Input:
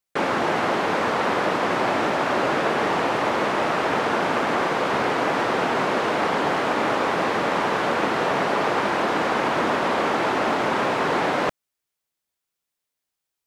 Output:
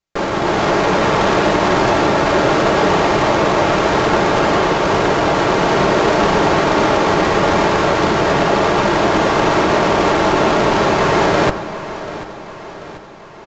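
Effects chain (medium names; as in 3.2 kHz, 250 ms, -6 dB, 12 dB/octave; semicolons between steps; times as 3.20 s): tracing distortion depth 0.31 ms; tilt EQ -1.5 dB/octave; de-hum 55.45 Hz, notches 30; in parallel at -0.5 dB: peak limiter -18 dBFS, peak gain reduction 10 dB; on the sum: level rider; comb of notches 250 Hz; feedback delay 738 ms, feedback 55%, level -15 dB; on a send at -16 dB: reverberation RT60 4.1 s, pre-delay 65 ms; on the sum: resampled via 16 kHz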